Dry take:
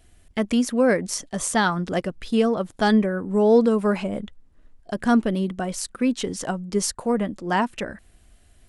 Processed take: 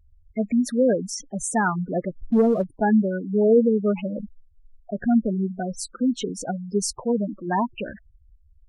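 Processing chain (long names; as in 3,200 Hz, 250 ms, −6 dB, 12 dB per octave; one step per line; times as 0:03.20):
gate on every frequency bin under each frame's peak −10 dB strong
0:02.16–0:02.64: leveller curve on the samples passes 1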